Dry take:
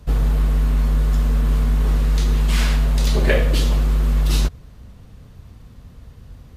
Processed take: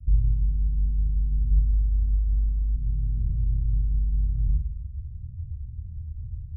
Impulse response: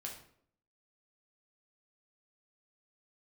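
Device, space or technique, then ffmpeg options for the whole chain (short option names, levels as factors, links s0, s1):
club heard from the street: -filter_complex "[0:a]asettb=1/sr,asplit=3[s0][s1][s2];[s0]atrim=end=1.504[s3];[s1]atrim=start=1.5:end=2.76,asetpts=PTS-STARTPTS,afade=t=in:d=0.004:c=qsin,afade=t=out:st=1.256:d=0.004:c=qsin,aecho=1:1:3.3:0.75,atrim=end_sample=55566[s4];[s2]atrim=start=2.756[s5];[s3][s4]acrossfade=d=0.004:c1=hsin:c2=qsin[s6];[s6][s5]acrossfade=d=0.004:c1=qsin:c2=hsin,alimiter=limit=0.188:level=0:latency=1,lowpass=f=120:w=0.5412,lowpass=f=120:w=1.3066[s7];[1:a]atrim=start_sample=2205[s8];[s7][s8]afir=irnorm=-1:irlink=0,volume=2.66"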